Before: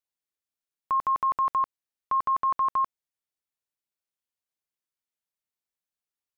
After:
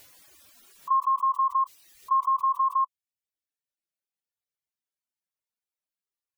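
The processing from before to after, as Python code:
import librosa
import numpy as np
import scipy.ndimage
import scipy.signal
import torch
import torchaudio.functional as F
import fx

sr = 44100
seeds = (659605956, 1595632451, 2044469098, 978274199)

y = fx.hpss_only(x, sr, part='harmonic')
y = fx.dereverb_blind(y, sr, rt60_s=1.2)
y = fx.pre_swell(y, sr, db_per_s=27.0)
y = y * 10.0 ** (2.5 / 20.0)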